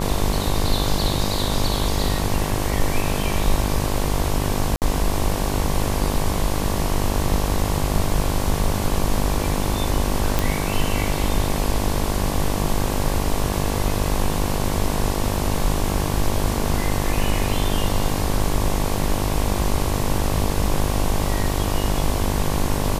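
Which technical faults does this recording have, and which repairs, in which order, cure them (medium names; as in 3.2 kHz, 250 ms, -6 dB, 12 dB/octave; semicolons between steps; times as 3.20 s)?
buzz 50 Hz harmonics 23 -25 dBFS
4.76–4.82 s: dropout 58 ms
10.39 s: pop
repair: de-click; de-hum 50 Hz, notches 23; interpolate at 4.76 s, 58 ms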